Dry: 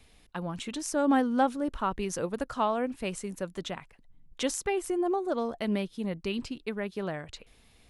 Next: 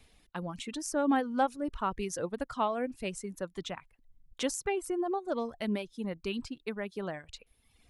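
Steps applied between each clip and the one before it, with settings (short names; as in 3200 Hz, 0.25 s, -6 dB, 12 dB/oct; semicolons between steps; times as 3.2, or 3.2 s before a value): reverb removal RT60 1 s; gain -2 dB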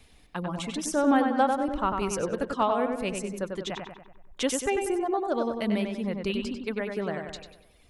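darkening echo 95 ms, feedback 52%, low-pass 3500 Hz, level -4.5 dB; gain +4.5 dB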